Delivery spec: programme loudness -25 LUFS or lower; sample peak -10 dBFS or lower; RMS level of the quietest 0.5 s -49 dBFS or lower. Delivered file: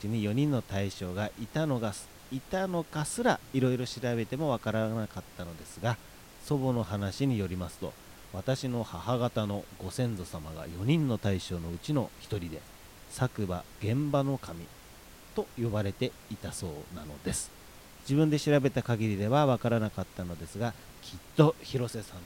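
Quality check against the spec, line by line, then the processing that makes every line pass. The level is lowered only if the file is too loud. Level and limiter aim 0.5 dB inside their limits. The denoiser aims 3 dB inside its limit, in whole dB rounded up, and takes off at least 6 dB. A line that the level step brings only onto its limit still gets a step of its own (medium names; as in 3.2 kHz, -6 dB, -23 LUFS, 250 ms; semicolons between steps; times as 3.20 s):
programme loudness -32.0 LUFS: pass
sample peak -8.0 dBFS: fail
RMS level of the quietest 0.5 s -51 dBFS: pass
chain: peak limiter -10.5 dBFS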